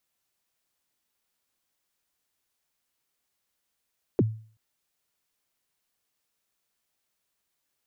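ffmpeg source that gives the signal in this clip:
-f lavfi -i "aevalsrc='0.178*pow(10,-3*t/0.44)*sin(2*PI*(480*0.034/log(110/480)*(exp(log(110/480)*min(t,0.034)/0.034)-1)+110*max(t-0.034,0)))':d=0.38:s=44100"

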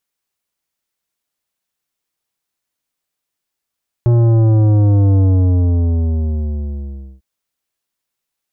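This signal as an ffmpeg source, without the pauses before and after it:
-f lavfi -i "aevalsrc='0.335*clip((3.15-t)/2.02,0,1)*tanh(3.76*sin(2*PI*120*3.15/log(65/120)*(exp(log(65/120)*t/3.15)-1)))/tanh(3.76)':d=3.15:s=44100"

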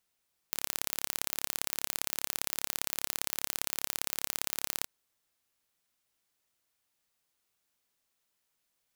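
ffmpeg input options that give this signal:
-f lavfi -i "aevalsrc='0.708*eq(mod(n,1260),0)*(0.5+0.5*eq(mod(n,2520),0))':d=4.33:s=44100"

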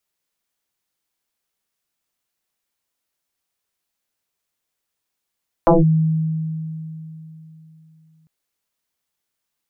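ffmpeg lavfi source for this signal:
-f lavfi -i "aevalsrc='0.398*pow(10,-3*t/3.44)*sin(2*PI*159*t+5.7*clip(1-t/0.17,0,1)*sin(2*PI*1.06*159*t))':d=2.6:s=44100"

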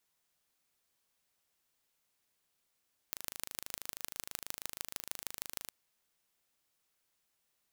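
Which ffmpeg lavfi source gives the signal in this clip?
-f lavfi -i "aevalsrc='0.355*eq(mod(n,1683),0)*(0.5+0.5*eq(mod(n,6732),0))':d=2.56:s=44100"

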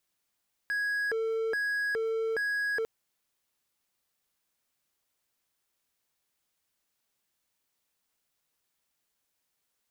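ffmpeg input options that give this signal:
-f lavfi -i "aevalsrc='0.0531*(1-4*abs(mod((1054*t+606/1.2*(0.5-abs(mod(1.2*t,1)-0.5)))+0.25,1)-0.5))':d=2.15:s=44100"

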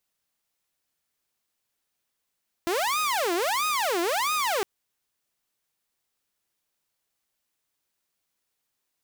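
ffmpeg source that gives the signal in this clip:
-f lavfi -i "aevalsrc='0.0891*(2*mod((793.5*t-456.5/(2*PI*1.5)*sin(2*PI*1.5*t)),1)-1)':d=1.96:s=44100"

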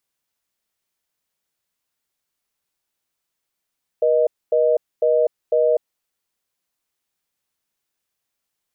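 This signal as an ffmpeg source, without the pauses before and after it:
-f lavfi -i "aevalsrc='0.15*(sin(2*PI*480*t)+sin(2*PI*620*t))*clip(min(mod(t,0.5),0.25-mod(t,0.5))/0.005,0,1)':d=1.76:s=44100"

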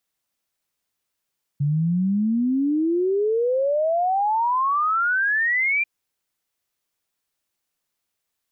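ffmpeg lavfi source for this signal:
-f lavfi -i "aevalsrc='0.126*clip(min(t,4.24-t)/0.01,0,1)*sin(2*PI*140*4.24/log(2400/140)*(exp(log(2400/140)*t/4.24)-1))':d=4.24:s=44100"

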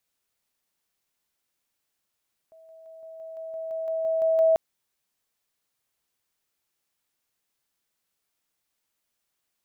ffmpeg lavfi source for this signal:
-f lavfi -i "aevalsrc='pow(10,(-49+3*floor(t/0.17))/20)*sin(2*PI*648*t)':d=2.04:s=44100"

